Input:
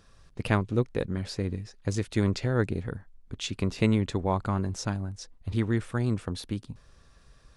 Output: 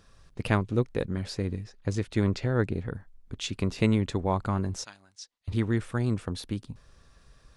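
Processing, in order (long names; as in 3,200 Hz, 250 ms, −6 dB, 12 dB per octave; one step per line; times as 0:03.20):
0:01.64–0:02.95: high-shelf EQ 6,000 Hz −8 dB
0:04.84–0:05.48: resonant band-pass 4,700 Hz, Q 0.9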